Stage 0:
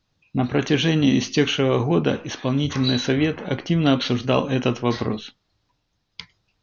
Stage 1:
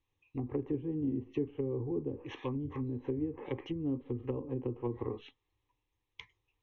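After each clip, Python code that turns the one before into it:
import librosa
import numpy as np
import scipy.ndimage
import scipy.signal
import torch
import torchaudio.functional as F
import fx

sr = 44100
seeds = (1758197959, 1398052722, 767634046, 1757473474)

y = fx.env_lowpass_down(x, sr, base_hz=320.0, full_db=-16.5)
y = fx.fixed_phaser(y, sr, hz=970.0, stages=8)
y = y * 10.0 ** (-8.5 / 20.0)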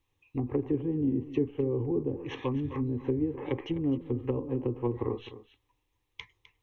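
y = x + 10.0 ** (-15.0 / 20.0) * np.pad(x, (int(256 * sr / 1000.0), 0))[:len(x)]
y = y * 10.0 ** (5.5 / 20.0)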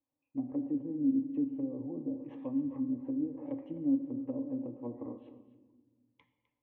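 y = fx.double_bandpass(x, sr, hz=400.0, octaves=1.1)
y = fx.room_shoebox(y, sr, seeds[0], volume_m3=1200.0, walls='mixed', distance_m=0.6)
y = y * 10.0 ** (1.5 / 20.0)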